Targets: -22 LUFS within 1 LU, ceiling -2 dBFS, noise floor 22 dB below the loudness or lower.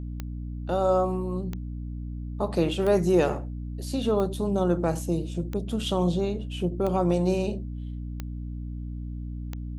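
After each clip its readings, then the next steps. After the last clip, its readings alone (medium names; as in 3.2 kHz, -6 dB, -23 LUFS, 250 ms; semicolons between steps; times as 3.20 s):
clicks found 8; hum 60 Hz; highest harmonic 300 Hz; hum level -31 dBFS; loudness -28.0 LUFS; peak level -10.0 dBFS; loudness target -22.0 LUFS
-> de-click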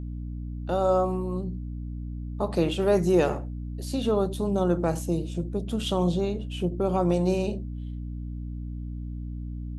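clicks found 0; hum 60 Hz; highest harmonic 300 Hz; hum level -31 dBFS
-> hum notches 60/120/180/240/300 Hz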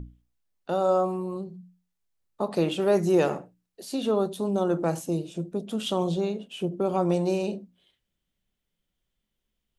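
hum not found; loudness -27.0 LUFS; peak level -11.0 dBFS; loudness target -22.0 LUFS
-> trim +5 dB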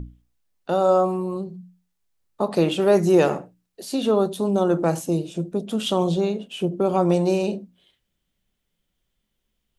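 loudness -22.0 LUFS; peak level -6.0 dBFS; noise floor -77 dBFS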